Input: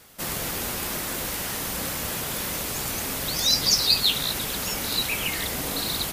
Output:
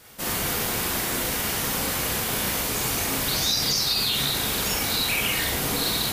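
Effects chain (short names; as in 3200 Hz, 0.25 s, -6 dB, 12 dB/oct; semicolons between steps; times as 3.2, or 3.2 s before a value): limiter -18 dBFS, peak gain reduction 11.5 dB; reverb RT60 0.40 s, pre-delay 32 ms, DRR -2 dB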